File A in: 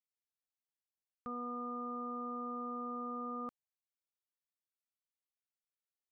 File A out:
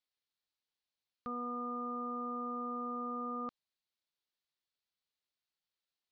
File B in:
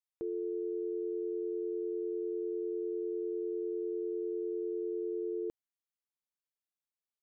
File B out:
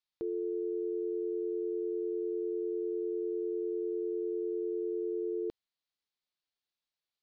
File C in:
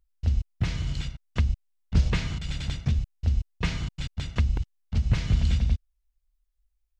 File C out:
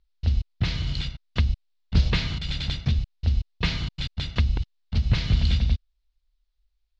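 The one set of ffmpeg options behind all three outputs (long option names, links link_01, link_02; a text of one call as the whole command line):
ffmpeg -i in.wav -af "lowpass=frequency=4200:width_type=q:width=2.6,volume=1.5dB" out.wav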